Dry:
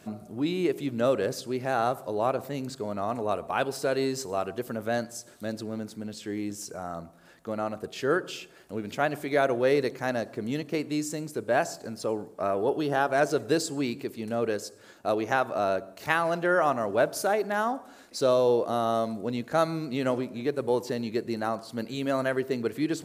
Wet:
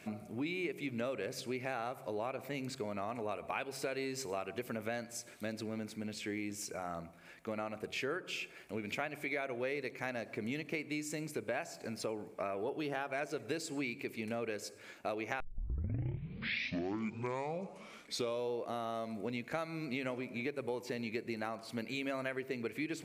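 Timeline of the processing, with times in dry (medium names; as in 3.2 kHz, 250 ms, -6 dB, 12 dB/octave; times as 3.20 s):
15.40 s: tape start 3.12 s
whole clip: peaking EQ 2.3 kHz +14.5 dB 0.47 oct; de-hum 45.75 Hz, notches 4; compression, threshold -31 dBFS; trim -4 dB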